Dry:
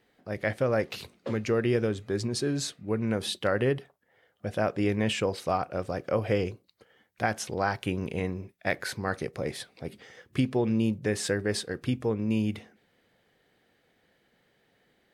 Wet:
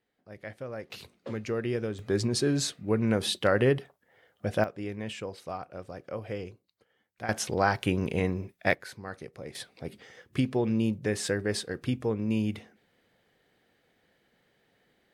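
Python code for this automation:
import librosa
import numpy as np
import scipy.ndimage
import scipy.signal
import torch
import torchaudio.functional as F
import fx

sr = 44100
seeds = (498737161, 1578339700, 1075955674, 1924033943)

y = fx.gain(x, sr, db=fx.steps((0.0, -12.5), (0.9, -5.0), (1.99, 2.5), (4.64, -9.5), (7.29, 3.0), (8.74, -9.5), (9.55, -1.0)))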